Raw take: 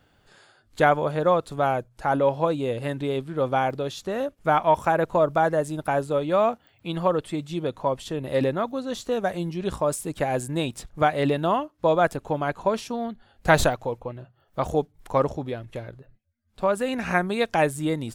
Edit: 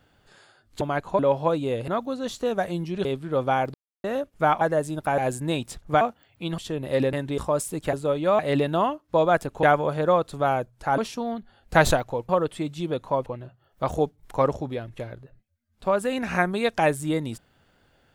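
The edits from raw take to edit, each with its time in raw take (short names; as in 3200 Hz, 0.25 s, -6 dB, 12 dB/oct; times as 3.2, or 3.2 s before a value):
0.81–2.16 swap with 12.33–12.71
2.85–3.1 swap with 8.54–9.71
3.79–4.09 mute
4.66–5.42 cut
5.99–6.45 swap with 10.26–11.09
7.02–7.99 move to 14.02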